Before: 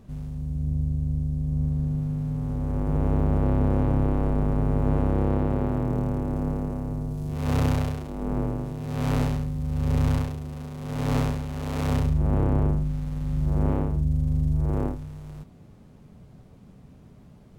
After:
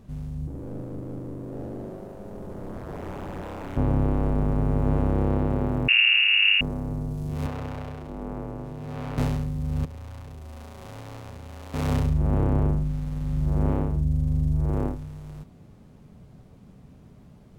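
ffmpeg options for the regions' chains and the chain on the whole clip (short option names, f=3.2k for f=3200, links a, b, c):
-filter_complex "[0:a]asettb=1/sr,asplit=3[a][b][c];[a]atrim=end=0.474[d];[b]atrim=start=0.47:end=3.77,asetpts=PTS-STARTPTS,afade=t=in:d=0.004:c=qsin,afade=t=out:st=3.296:d=0.004:c=qsin,aeval=exprs='0.0398*(abs(mod(val(0)/0.0398+3,4)-2)-1)':c=same,equalizer=f=2.5k:t=o:w=2.6:g=-7.5,bandreject=f=50:t=h:w=6,bandreject=f=100:t=h:w=6,bandreject=f=150:t=h:w=6,bandreject=f=200:t=h:w=6,bandreject=f=250:t=h:w=6,bandreject=f=300:t=h:w=6,bandreject=f=350:t=h:w=6,bandreject=f=400:t=h:w=6,bandreject=f=450:t=h:w=6[e];[c]atrim=start=3.766[f];[d][e]acrossfade=d=0.004:c1=hsin:c2=qsin[g];[g][f]acrossfade=d=0.004:c1=qsin:c2=hsin,asettb=1/sr,asplit=3[h][i][j];[h]atrim=end=5.884[k];[i]atrim=start=5.88:end=6.61,asetpts=PTS-STARTPTS,afade=t=in:d=0.004:c=qsin,afade=t=out:st=0.726:d=0.004:c=qsin,acontrast=78,bandreject=f=880:w=11,lowpass=f=2.5k:t=q:w=0.5098,lowpass=f=2.5k:t=q:w=0.6013,lowpass=f=2.5k:t=q:w=0.9,lowpass=f=2.5k:t=q:w=2.563,afreqshift=-2900[l];[j]atrim=start=6.606[m];[k][l]acrossfade=d=0.004:c1=hsin:c2=qsin[n];[n][m]acrossfade=d=0.004:c1=qsin:c2=hsin,asettb=1/sr,asplit=3[o][p][q];[o]atrim=end=7.464[r];[p]atrim=start=7.46:end=9.18,asetpts=PTS-STARTPTS,afade=t=in:d=0.004:c=qsin,afade=t=out:st=1.716:d=0.004:c=qsin,highshelf=f=3.7k:g=-8.5,acrossover=split=380|3800[s][t][u];[s]acompressor=threshold=-34dB:ratio=4[v];[t]acompressor=threshold=-36dB:ratio=4[w];[u]acompressor=threshold=-58dB:ratio=4[x];[v][w][x]amix=inputs=3:normalize=0[y];[q]atrim=start=9.176[z];[r][y]acrossfade=d=0.004:c1=hsin:c2=qsin[aa];[aa][z]acrossfade=d=0.004:c1=qsin:c2=hsin,asettb=1/sr,asplit=3[ab][ac][ad];[ab]atrim=end=9.854[ae];[ac]atrim=start=9.85:end=11.74,asetpts=PTS-STARTPTS,afade=t=in:d=0.004:c=qsin,afade=t=out:st=1.886:d=0.004:c=qsin,bandreject=f=50:t=h:w=6,bandreject=f=100:t=h:w=6,bandreject=f=150:t=h:w=6,bandreject=f=200:t=h:w=6,bandreject=f=250:t=h:w=6,bandreject=f=300:t=h:w=6,bandreject=f=350:t=h:w=6,bandreject=f=400:t=h:w=6,bandreject=f=450:t=h:w=6,acompressor=threshold=-36dB:ratio=10:attack=3.2:release=140:knee=1:detection=peak[af];[ad]atrim=start=11.736[ag];[ae][af]acrossfade=d=0.004:c1=hsin:c2=qsin[ah];[ah][ag]acrossfade=d=0.004:c1=qsin:c2=hsin"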